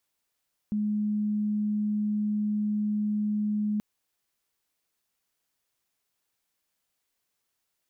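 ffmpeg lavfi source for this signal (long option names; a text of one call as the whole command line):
ffmpeg -f lavfi -i "aevalsrc='0.0596*sin(2*PI*210*t)':duration=3.08:sample_rate=44100" out.wav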